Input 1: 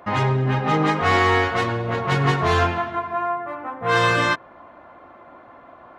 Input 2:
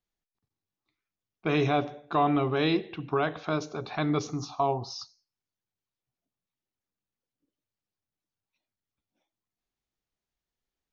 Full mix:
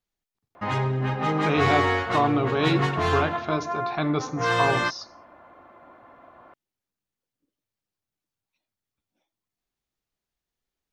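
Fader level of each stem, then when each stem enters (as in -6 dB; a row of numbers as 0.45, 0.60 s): -5.0, +2.0 dB; 0.55, 0.00 s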